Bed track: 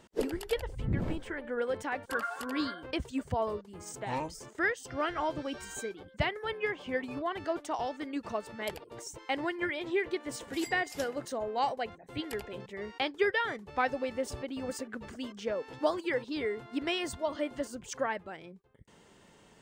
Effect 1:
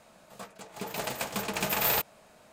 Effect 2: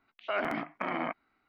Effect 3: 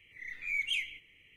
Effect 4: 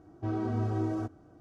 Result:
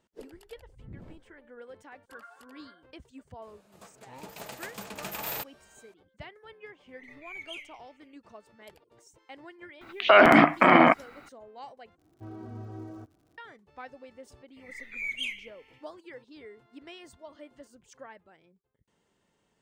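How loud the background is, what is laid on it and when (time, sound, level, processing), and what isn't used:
bed track −14.5 dB
0:03.42: mix in 1 −8.5 dB
0:06.80: mix in 3 −9.5 dB
0:09.81: mix in 2 −4.5 dB + boost into a limiter +27 dB
0:11.98: overwrite with 4 −11 dB + surface crackle 110 per second −46 dBFS
0:14.50: mix in 3 −1 dB, fades 0.10 s

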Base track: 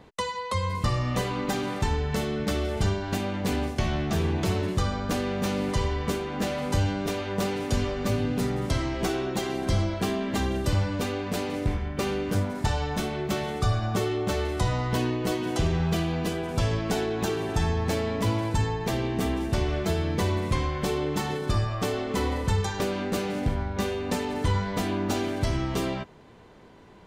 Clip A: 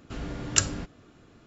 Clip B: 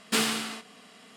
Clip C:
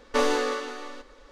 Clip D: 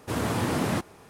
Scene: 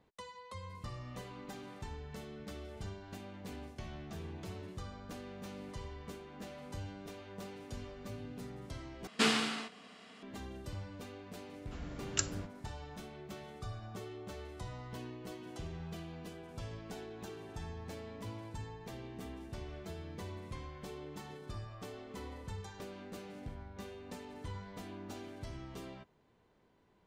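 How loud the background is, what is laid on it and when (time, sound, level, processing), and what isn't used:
base track −19 dB
0:09.07: overwrite with B −2 dB + high-frequency loss of the air 72 metres
0:11.61: mix in A −10.5 dB
not used: C, D

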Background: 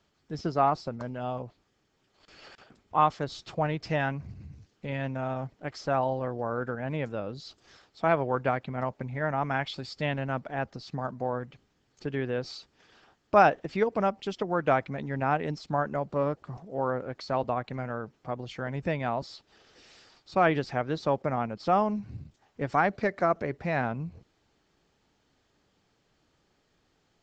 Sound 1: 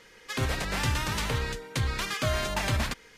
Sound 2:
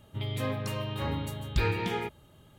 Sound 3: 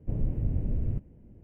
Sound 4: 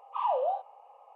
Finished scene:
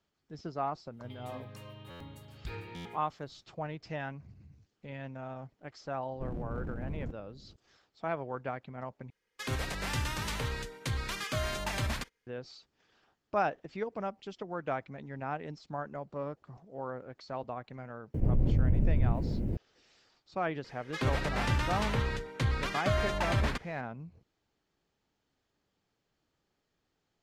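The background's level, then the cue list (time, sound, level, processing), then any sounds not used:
background −10 dB
0:00.89: mix in 2 −14.5 dB, fades 0.10 s + buffer that repeats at 0:01.01/0:01.86
0:06.13: mix in 3 −5 dB + wave folding −27.5 dBFS
0:09.10: overwrite with 1 −5.5 dB + noise gate −47 dBFS, range −23 dB
0:18.14: mix in 3 −1 dB + envelope flattener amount 70%
0:20.64: mix in 1 −1 dB + low-pass filter 2,400 Hz 6 dB per octave
not used: 4

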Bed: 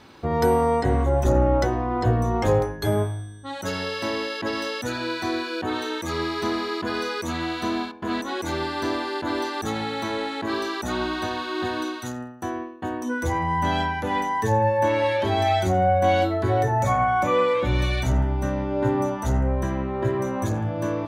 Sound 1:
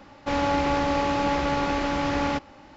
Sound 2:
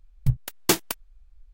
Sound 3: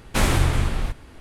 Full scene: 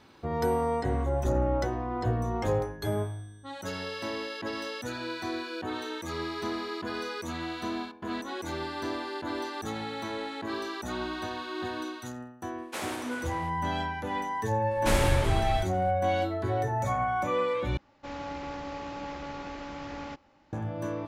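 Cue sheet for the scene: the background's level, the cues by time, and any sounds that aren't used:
bed −7.5 dB
0:12.58: mix in 3 −11.5 dB + Chebyshev high-pass filter 460 Hz
0:14.71: mix in 3 −6 dB
0:17.77: overwrite with 1 −14 dB
not used: 2

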